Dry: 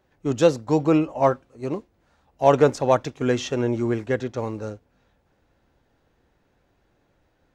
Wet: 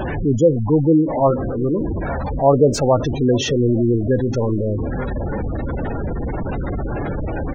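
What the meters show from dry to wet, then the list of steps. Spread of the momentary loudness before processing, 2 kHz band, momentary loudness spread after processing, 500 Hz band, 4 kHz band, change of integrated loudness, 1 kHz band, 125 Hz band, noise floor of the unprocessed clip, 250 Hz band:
12 LU, +1.5 dB, 10 LU, +4.0 dB, +6.0 dB, +3.5 dB, +2.0 dB, +10.0 dB, -67 dBFS, +7.0 dB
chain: jump at every zero crossing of -18 dBFS; bass shelf 300 Hz +4 dB; delay 872 ms -15.5 dB; spectral gate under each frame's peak -15 dB strong

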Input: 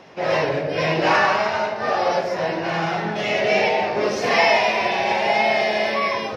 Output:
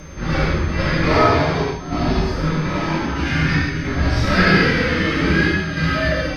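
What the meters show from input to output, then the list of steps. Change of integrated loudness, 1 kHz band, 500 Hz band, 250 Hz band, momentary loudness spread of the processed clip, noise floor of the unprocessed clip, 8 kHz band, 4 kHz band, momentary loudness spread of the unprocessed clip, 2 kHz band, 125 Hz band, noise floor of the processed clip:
+1.5 dB, -3.0 dB, -2.5 dB, +10.0 dB, 7 LU, -28 dBFS, no reading, 0.0 dB, 6 LU, +2.0 dB, +14.5 dB, -27 dBFS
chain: square tremolo 0.52 Hz, depth 60%, duty 85%; reverse echo 413 ms -17.5 dB; frequency shift -490 Hz; gated-style reverb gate 170 ms flat, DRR -3.5 dB; whistle 6.3 kHz -45 dBFS; trim -2 dB

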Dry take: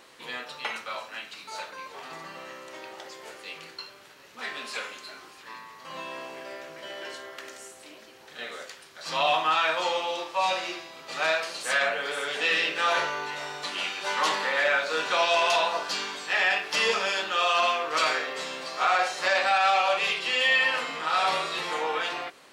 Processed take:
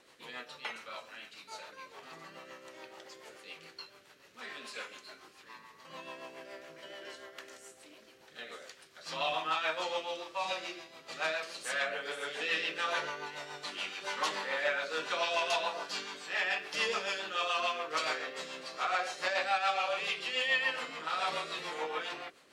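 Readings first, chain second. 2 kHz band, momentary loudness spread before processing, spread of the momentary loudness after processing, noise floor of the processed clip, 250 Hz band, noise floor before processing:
-8.5 dB, 19 LU, 19 LU, -60 dBFS, -7.0 dB, -51 dBFS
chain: rotary cabinet horn 7 Hz; trim -5.5 dB

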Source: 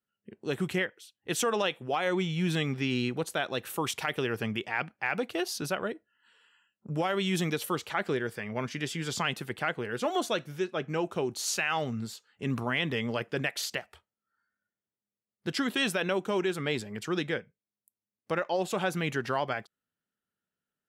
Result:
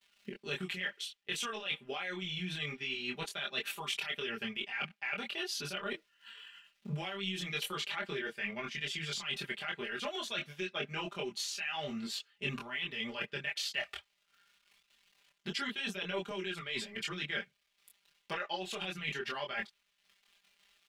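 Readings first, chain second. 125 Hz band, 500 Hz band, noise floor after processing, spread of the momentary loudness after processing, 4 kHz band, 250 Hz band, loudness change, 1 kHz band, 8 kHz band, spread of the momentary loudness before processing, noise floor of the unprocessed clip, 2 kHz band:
-11.0 dB, -11.0 dB, -77 dBFS, 5 LU, -1.0 dB, -11.0 dB, -6.0 dB, -9.5 dB, -7.5 dB, 6 LU, under -85 dBFS, -4.0 dB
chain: crackle 360 per s -61 dBFS; comb 5 ms, depth 91%; peak limiter -21.5 dBFS, peak gain reduction 10.5 dB; peaking EQ 2.9 kHz +14 dB 1.9 oct; reverse; compression 6:1, threshold -34 dBFS, peak gain reduction 16 dB; reverse; transient shaper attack +6 dB, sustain -7 dB; chorus voices 6, 0.53 Hz, delay 24 ms, depth 3.6 ms

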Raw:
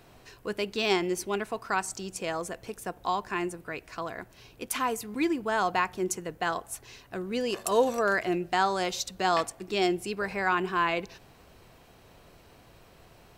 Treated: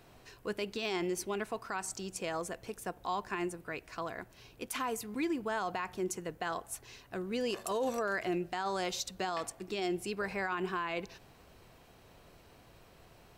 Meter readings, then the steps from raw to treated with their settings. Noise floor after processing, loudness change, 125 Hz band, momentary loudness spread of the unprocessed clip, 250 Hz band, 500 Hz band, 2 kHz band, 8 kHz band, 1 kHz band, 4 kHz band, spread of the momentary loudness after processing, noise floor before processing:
-60 dBFS, -7.0 dB, -5.0 dB, 12 LU, -5.5 dB, -6.5 dB, -7.5 dB, -5.0 dB, -8.5 dB, -7.0 dB, 8 LU, -56 dBFS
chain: peak limiter -22 dBFS, peak gain reduction 11 dB; trim -3.5 dB

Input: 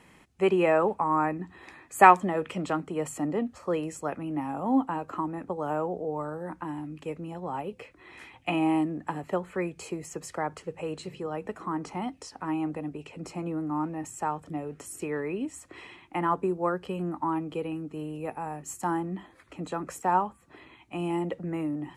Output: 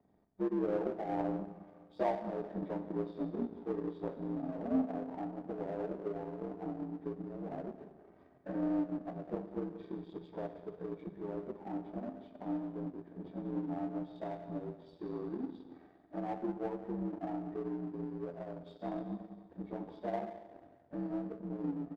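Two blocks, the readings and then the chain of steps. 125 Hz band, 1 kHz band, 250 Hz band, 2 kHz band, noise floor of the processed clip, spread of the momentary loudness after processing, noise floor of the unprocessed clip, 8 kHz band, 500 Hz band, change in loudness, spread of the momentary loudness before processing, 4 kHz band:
-8.5 dB, -17.0 dB, -6.5 dB, -21.0 dB, -62 dBFS, 12 LU, -57 dBFS, under -35 dB, -8.5 dB, -10.0 dB, 12 LU, under -15 dB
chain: frequency axis rescaled in octaves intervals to 79%; compression 2:1, threshold -39 dBFS, peak gain reduction 15 dB; boxcar filter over 32 samples; on a send: delay 181 ms -14.5 dB; on the sum: Schroeder reverb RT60 2.2 s, combs from 27 ms, DRR 5.5 dB; power-law waveshaper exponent 1.4; trim +4 dB

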